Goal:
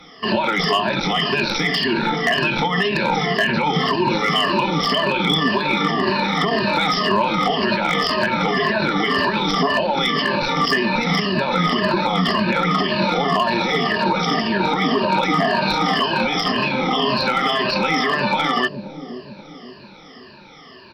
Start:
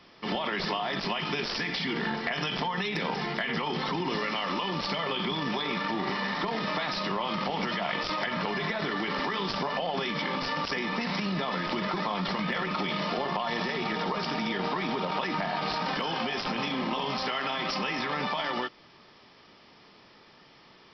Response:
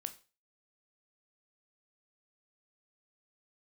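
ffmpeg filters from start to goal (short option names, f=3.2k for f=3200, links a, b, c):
-filter_complex "[0:a]afftfilt=real='re*pow(10,19/40*sin(2*PI*(1.4*log(max(b,1)*sr/1024/100)/log(2)-(-1.9)*(pts-256)/sr)))':imag='im*pow(10,19/40*sin(2*PI*(1.4*log(max(b,1)*sr/1024/100)/log(2)-(-1.9)*(pts-256)/sr)))':win_size=1024:overlap=0.75,acrossover=split=570[a][b];[a]aecho=1:1:531|1062|1593|2124|2655:0.501|0.221|0.097|0.0427|0.0188[c];[b]volume=20dB,asoftclip=hard,volume=-20dB[d];[c][d]amix=inputs=2:normalize=0,volume=7.5dB"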